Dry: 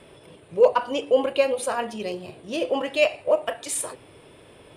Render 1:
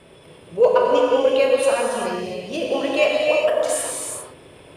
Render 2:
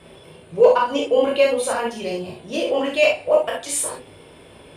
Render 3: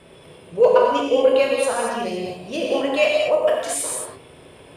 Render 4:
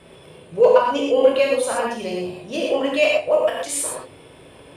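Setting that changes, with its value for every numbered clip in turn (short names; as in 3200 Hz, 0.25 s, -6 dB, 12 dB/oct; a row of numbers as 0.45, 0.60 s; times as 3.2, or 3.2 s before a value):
non-linear reverb, gate: 430, 90, 260, 150 ms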